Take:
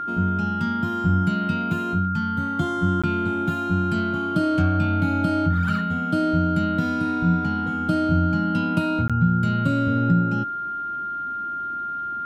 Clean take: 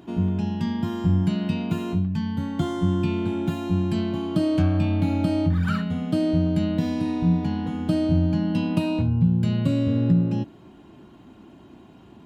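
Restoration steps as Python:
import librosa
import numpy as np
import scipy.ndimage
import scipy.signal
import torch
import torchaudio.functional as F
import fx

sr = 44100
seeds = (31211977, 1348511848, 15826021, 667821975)

y = fx.notch(x, sr, hz=1400.0, q=30.0)
y = fx.fix_interpolate(y, sr, at_s=(3.02, 9.08), length_ms=16.0)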